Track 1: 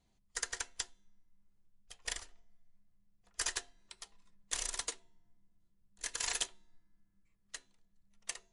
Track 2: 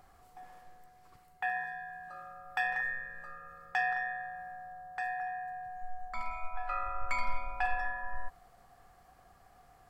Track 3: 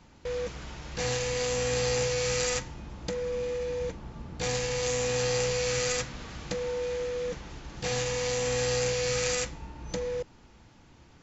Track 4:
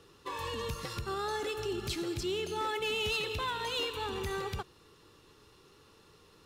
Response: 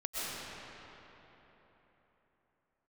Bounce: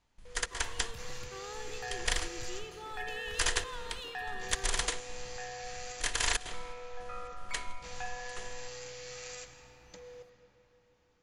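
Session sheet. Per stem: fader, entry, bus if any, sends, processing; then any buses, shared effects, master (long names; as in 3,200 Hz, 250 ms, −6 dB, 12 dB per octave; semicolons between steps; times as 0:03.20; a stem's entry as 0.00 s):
+3.0 dB, 0.00 s, send −22.5 dB, compressor on every frequency bin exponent 0.6; bass and treble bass +8 dB, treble −7 dB; gate pattern "..xxx.xxxx.xxx." 165 BPM −24 dB
−12.5 dB, 0.40 s, no send, no processing
−19.5 dB, 0.00 s, send −12 dB, low-shelf EQ 400 Hz −6 dB
−13.5 dB, 0.25 s, no send, no processing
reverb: on, RT60 3.8 s, pre-delay 85 ms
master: parametric band 210 Hz −3 dB 2 octaves; automatic gain control gain up to 3.5 dB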